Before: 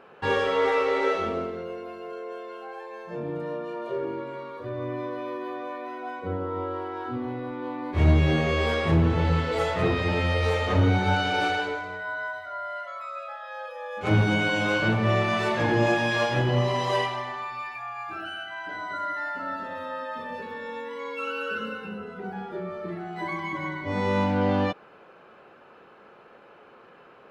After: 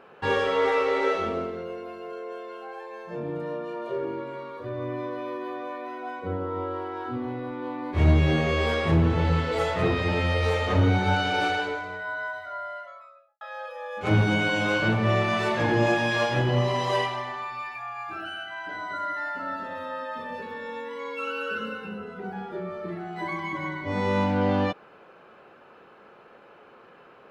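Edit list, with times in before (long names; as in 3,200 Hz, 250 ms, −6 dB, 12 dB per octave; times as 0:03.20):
0:12.51–0:13.41: fade out and dull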